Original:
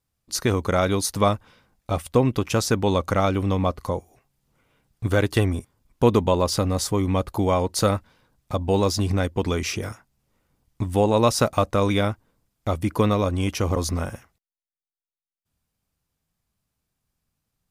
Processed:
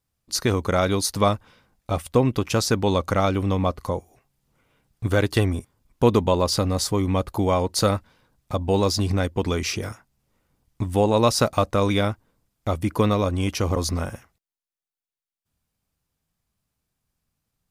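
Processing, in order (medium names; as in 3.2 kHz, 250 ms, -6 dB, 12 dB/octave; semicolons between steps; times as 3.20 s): dynamic bell 4.5 kHz, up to +4 dB, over -43 dBFS, Q 2.9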